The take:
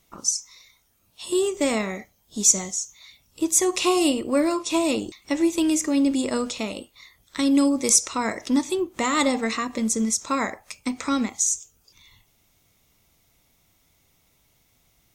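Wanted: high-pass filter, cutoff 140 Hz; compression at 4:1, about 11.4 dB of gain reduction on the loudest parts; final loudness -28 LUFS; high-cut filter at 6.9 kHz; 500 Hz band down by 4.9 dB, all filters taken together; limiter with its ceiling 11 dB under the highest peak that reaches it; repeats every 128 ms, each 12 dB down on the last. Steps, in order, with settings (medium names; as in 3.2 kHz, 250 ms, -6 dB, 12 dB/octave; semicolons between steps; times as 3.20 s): high-pass 140 Hz; low-pass 6.9 kHz; peaking EQ 500 Hz -7 dB; compression 4:1, threshold -30 dBFS; peak limiter -24 dBFS; feedback delay 128 ms, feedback 25%, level -12 dB; trim +6 dB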